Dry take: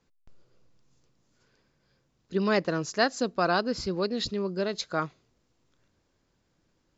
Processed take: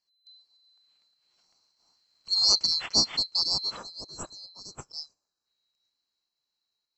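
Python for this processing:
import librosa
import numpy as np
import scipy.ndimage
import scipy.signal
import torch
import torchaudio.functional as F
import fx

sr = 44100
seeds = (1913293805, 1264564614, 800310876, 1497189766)

p1 = fx.band_swap(x, sr, width_hz=4000)
p2 = fx.doppler_pass(p1, sr, speed_mps=7, closest_m=5.3, pass_at_s=2.5)
p3 = fx.volume_shaper(p2, sr, bpm=105, per_beat=1, depth_db=-11, release_ms=78.0, shape='slow start')
p4 = p2 + (p3 * librosa.db_to_amplitude(-2.0))
p5 = fx.spec_box(p4, sr, start_s=3.77, length_s=1.69, low_hz=1800.0, high_hz=4600.0, gain_db=-11)
y = p5 * librosa.db_to_amplitude(-2.5)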